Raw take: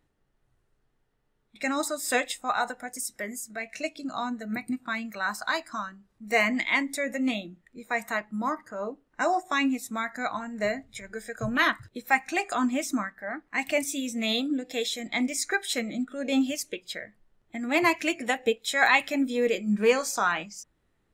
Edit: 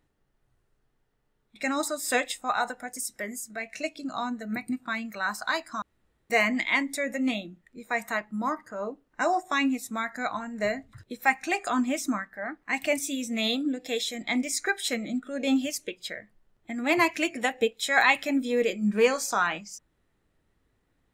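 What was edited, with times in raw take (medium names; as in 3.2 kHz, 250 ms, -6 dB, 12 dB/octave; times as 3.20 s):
5.82–6.30 s: room tone
10.93–11.78 s: delete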